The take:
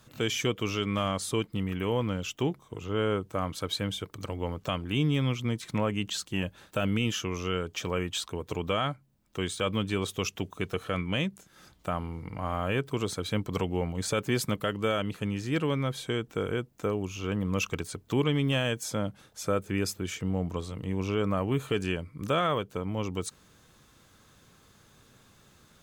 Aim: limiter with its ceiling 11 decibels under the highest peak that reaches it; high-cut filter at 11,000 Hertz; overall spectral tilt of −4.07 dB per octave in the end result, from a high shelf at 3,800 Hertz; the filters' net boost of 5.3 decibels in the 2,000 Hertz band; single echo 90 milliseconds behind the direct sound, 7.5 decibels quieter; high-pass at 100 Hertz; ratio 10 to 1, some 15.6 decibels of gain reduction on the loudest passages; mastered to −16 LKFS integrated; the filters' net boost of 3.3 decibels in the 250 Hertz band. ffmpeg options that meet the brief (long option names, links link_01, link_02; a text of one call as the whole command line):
ffmpeg -i in.wav -af "highpass=100,lowpass=11000,equalizer=frequency=250:width_type=o:gain=4.5,equalizer=frequency=2000:width_type=o:gain=5,highshelf=frequency=3800:gain=6,acompressor=threshold=-36dB:ratio=10,alimiter=level_in=5.5dB:limit=-24dB:level=0:latency=1,volume=-5.5dB,aecho=1:1:90:0.422,volume=25.5dB" out.wav